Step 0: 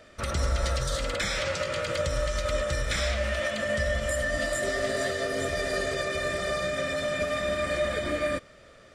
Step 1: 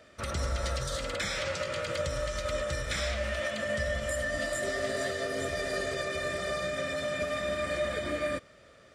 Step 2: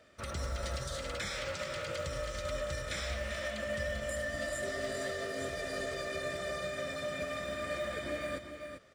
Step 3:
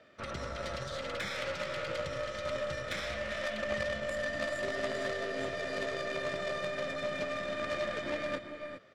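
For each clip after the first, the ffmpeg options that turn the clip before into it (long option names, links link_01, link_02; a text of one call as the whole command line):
ffmpeg -i in.wav -af "highpass=53,volume=-3.5dB" out.wav
ffmpeg -i in.wav -filter_complex "[0:a]acrusher=bits=8:mode=log:mix=0:aa=0.000001,asplit=2[link_01][link_02];[link_02]aecho=0:1:393:0.398[link_03];[link_01][link_03]amix=inputs=2:normalize=0,volume=-5.5dB" out.wav
ffmpeg -i in.wav -af "highpass=120,lowpass=4100,aeval=exprs='0.0562*(cos(1*acos(clip(val(0)/0.0562,-1,1)))-cos(1*PI/2))+0.02*(cos(4*acos(clip(val(0)/0.0562,-1,1)))-cos(4*PI/2))+0.0141*(cos(6*acos(clip(val(0)/0.0562,-1,1)))-cos(6*PI/2))':channel_layout=same,volume=2dB" out.wav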